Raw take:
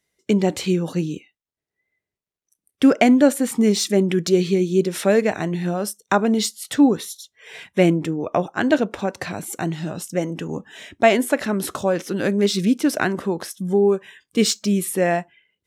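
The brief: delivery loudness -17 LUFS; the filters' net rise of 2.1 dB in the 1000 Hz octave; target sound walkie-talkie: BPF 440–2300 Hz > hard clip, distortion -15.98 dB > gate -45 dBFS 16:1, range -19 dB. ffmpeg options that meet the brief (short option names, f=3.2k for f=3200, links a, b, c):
-af "highpass=440,lowpass=2.3k,equalizer=f=1k:t=o:g=4,asoftclip=type=hard:threshold=-10.5dB,agate=range=-19dB:threshold=-45dB:ratio=16,volume=8dB"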